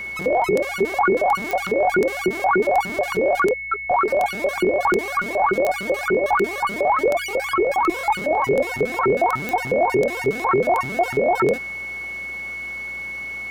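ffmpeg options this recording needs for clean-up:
-af "adeclick=t=4,bandreject=f=60.2:t=h:w=4,bandreject=f=120.4:t=h:w=4,bandreject=f=180.6:t=h:w=4,bandreject=f=2200:w=30"

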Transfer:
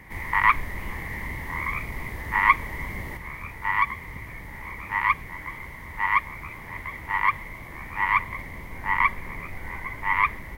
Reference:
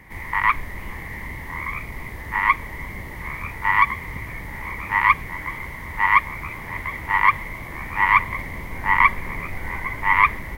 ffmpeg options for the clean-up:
-af "asetnsamples=n=441:p=0,asendcmd='3.17 volume volume 6dB',volume=1"

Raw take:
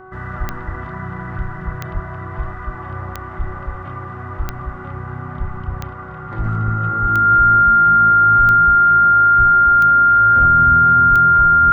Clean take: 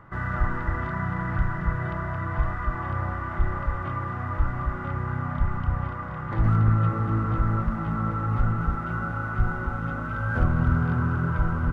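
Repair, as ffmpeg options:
-filter_complex "[0:a]adeclick=t=4,bandreject=f=374.8:t=h:w=4,bandreject=f=749.6:t=h:w=4,bandreject=f=1124.4:t=h:w=4,bandreject=f=1499.2:t=h:w=4,bandreject=f=1400:w=30,asplit=3[s0][s1][s2];[s0]afade=t=out:st=1.93:d=0.02[s3];[s1]highpass=f=140:w=0.5412,highpass=f=140:w=1.3066,afade=t=in:st=1.93:d=0.02,afade=t=out:st=2.05:d=0.02[s4];[s2]afade=t=in:st=2.05:d=0.02[s5];[s3][s4][s5]amix=inputs=3:normalize=0,asplit=3[s6][s7][s8];[s6]afade=t=out:st=7.01:d=0.02[s9];[s7]highpass=f=140:w=0.5412,highpass=f=140:w=1.3066,afade=t=in:st=7.01:d=0.02,afade=t=out:st=7.13:d=0.02[s10];[s8]afade=t=in:st=7.13:d=0.02[s11];[s9][s10][s11]amix=inputs=3:normalize=0,asplit=3[s12][s13][s14];[s12]afade=t=out:st=11.09:d=0.02[s15];[s13]highpass=f=140:w=0.5412,highpass=f=140:w=1.3066,afade=t=in:st=11.09:d=0.02,afade=t=out:st=11.21:d=0.02[s16];[s14]afade=t=in:st=11.21:d=0.02[s17];[s15][s16][s17]amix=inputs=3:normalize=0"

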